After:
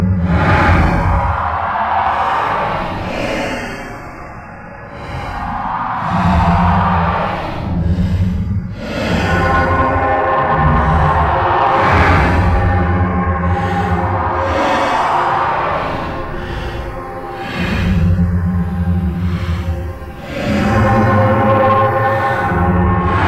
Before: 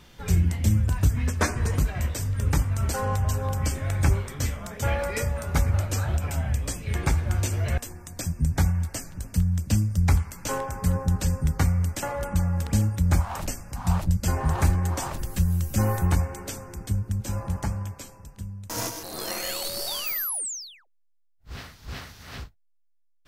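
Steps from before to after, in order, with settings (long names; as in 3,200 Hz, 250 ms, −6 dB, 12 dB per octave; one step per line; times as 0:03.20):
high-frequency loss of the air 400 metres
extreme stretch with random phases 7.6×, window 0.10 s, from 0:13.05
mid-hump overdrive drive 23 dB, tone 6,800 Hz, clips at −6.5 dBFS
level +6.5 dB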